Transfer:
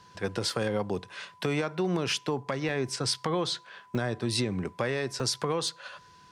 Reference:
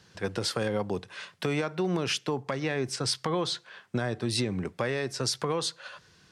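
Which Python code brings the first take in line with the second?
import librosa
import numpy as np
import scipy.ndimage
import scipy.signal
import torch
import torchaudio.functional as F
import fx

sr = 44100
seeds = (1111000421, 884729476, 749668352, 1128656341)

y = fx.notch(x, sr, hz=1000.0, q=30.0)
y = fx.fix_interpolate(y, sr, at_s=(0.5, 2.12, 2.69, 3.95, 5.2, 5.68), length_ms=1.0)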